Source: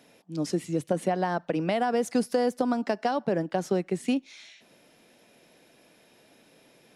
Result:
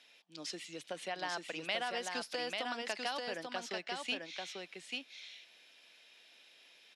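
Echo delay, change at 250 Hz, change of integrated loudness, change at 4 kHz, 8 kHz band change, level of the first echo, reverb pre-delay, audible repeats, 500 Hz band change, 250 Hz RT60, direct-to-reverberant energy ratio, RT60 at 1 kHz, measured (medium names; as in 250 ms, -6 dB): 841 ms, -20.5 dB, -11.5 dB, +3.5 dB, -5.0 dB, -3.5 dB, no reverb, 1, -14.5 dB, no reverb, no reverb, no reverb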